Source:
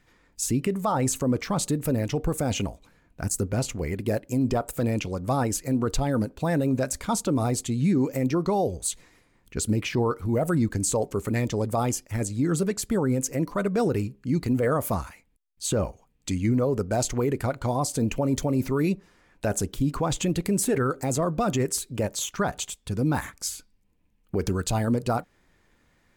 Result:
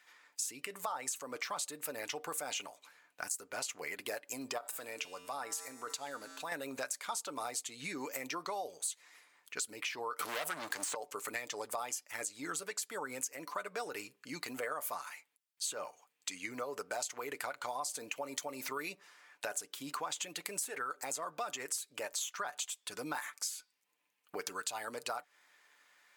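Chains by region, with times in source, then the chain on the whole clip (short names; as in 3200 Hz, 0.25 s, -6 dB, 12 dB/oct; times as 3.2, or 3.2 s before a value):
4.58–6.52 resonator 90 Hz, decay 1.7 s, harmonics odd, mix 70% + fast leveller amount 50%
10.19–10.95 sample leveller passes 3 + three-band squash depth 100%
whole clip: HPF 1000 Hz 12 dB/oct; comb 6.8 ms, depth 34%; compressor 5:1, threshold -39 dBFS; gain +2.5 dB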